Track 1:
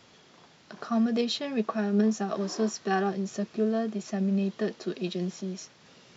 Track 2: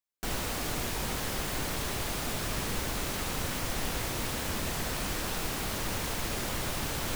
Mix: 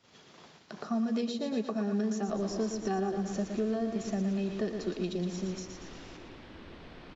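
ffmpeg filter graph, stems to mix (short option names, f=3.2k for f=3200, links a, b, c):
-filter_complex "[0:a]volume=1dB,asplit=2[a][b];[b]volume=-8.5dB[c];[1:a]lowpass=f=4k:w=0.5412,lowpass=f=4k:w=1.3066,equalizer=f=320:t=o:w=0.77:g=9.5,adelay=2050,volume=-18.5dB,asplit=2[d][e];[e]volume=-3.5dB[f];[c][f]amix=inputs=2:normalize=0,aecho=0:1:115|230|345|460|575|690|805:1|0.48|0.23|0.111|0.0531|0.0255|0.0122[g];[a][d][g]amix=inputs=3:normalize=0,agate=range=-13dB:threshold=-55dB:ratio=16:detection=peak,acrossover=split=810|6400[h][i][j];[h]acompressor=threshold=-29dB:ratio=4[k];[i]acompressor=threshold=-47dB:ratio=4[l];[j]acompressor=threshold=-51dB:ratio=4[m];[k][l][m]amix=inputs=3:normalize=0"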